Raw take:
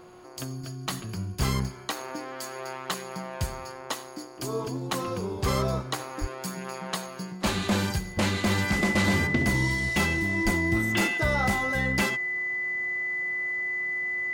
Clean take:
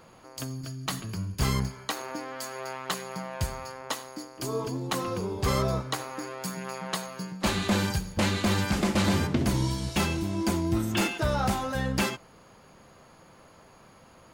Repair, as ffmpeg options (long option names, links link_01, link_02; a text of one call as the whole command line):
ffmpeg -i in.wav -filter_complex "[0:a]bandreject=frequency=361.9:width_type=h:width=4,bandreject=frequency=723.8:width_type=h:width=4,bandreject=frequency=1085.7:width_type=h:width=4,bandreject=frequency=1447.6:width_type=h:width=4,bandreject=frequency=2000:width=30,asplit=3[link_01][link_02][link_03];[link_01]afade=type=out:start_time=6.2:duration=0.02[link_04];[link_02]highpass=frequency=140:width=0.5412,highpass=frequency=140:width=1.3066,afade=type=in:start_time=6.2:duration=0.02,afade=type=out:start_time=6.32:duration=0.02[link_05];[link_03]afade=type=in:start_time=6.32:duration=0.02[link_06];[link_04][link_05][link_06]amix=inputs=3:normalize=0,asplit=3[link_07][link_08][link_09];[link_07]afade=type=out:start_time=10.44:duration=0.02[link_10];[link_08]highpass=frequency=140:width=0.5412,highpass=frequency=140:width=1.3066,afade=type=in:start_time=10.44:duration=0.02,afade=type=out:start_time=10.56:duration=0.02[link_11];[link_09]afade=type=in:start_time=10.56:duration=0.02[link_12];[link_10][link_11][link_12]amix=inputs=3:normalize=0" out.wav